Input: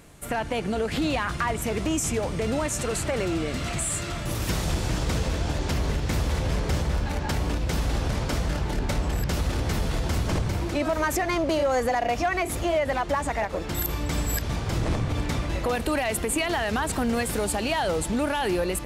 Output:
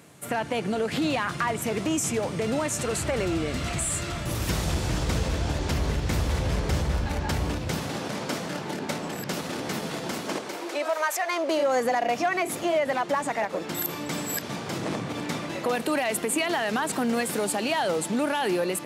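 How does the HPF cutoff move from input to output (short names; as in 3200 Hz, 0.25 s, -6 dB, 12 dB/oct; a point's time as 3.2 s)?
HPF 24 dB/oct
2.67 s 110 Hz
3.29 s 43 Hz
7.31 s 43 Hz
8.05 s 170 Hz
10.06 s 170 Hz
11.17 s 620 Hz
11.8 s 160 Hz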